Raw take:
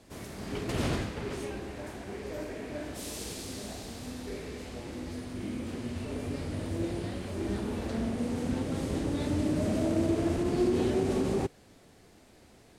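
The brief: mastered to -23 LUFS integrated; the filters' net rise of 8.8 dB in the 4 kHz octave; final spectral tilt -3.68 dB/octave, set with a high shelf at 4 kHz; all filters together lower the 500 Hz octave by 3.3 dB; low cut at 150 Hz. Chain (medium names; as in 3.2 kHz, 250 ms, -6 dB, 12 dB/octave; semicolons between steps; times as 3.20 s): high-pass 150 Hz; peaking EQ 500 Hz -5 dB; treble shelf 4 kHz +7.5 dB; peaking EQ 4 kHz +6.5 dB; trim +11 dB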